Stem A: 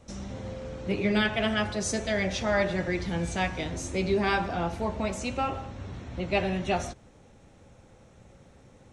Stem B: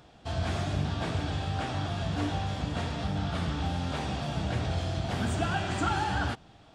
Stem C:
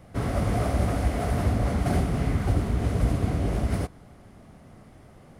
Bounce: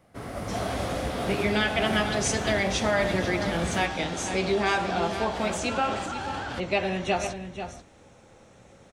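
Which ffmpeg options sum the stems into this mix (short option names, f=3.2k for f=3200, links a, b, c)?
-filter_complex "[0:a]adelay=400,volume=0dB,asplit=2[a][b];[b]volume=-12.5dB[c];[1:a]highpass=340,alimiter=level_in=4dB:limit=-24dB:level=0:latency=1:release=25,volume=-4dB,adelay=250,volume=-3.5dB[d];[2:a]volume=-6dB[e];[a][e]amix=inputs=2:normalize=0,lowshelf=f=170:g=-12,acompressor=threshold=-26dB:ratio=2.5,volume=0dB[f];[c]aecho=0:1:488:1[g];[d][f][g]amix=inputs=3:normalize=0,dynaudnorm=f=120:g=7:m=4.5dB"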